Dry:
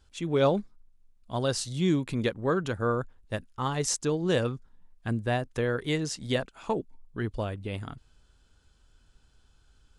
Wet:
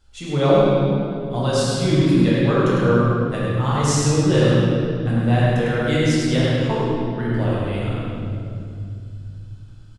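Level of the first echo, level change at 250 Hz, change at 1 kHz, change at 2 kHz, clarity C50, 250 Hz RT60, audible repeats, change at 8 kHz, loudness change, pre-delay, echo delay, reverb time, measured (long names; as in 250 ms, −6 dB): −2.5 dB, +12.0 dB, +9.0 dB, +9.0 dB, −4.5 dB, 4.0 s, 1, +6.5 dB, +10.5 dB, 6 ms, 102 ms, 2.5 s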